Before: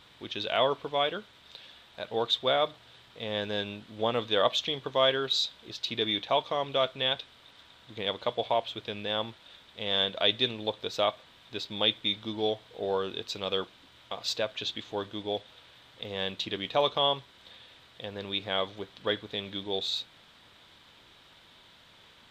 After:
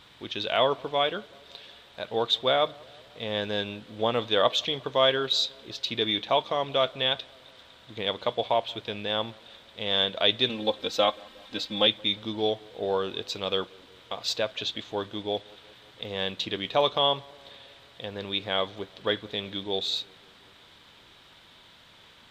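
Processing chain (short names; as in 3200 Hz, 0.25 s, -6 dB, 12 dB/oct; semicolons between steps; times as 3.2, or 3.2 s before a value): 10.49–11.87 comb 3.8 ms, depth 87%; on a send: tape echo 0.18 s, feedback 75%, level -23.5 dB, low-pass 1200 Hz; on the sum: gain +2.5 dB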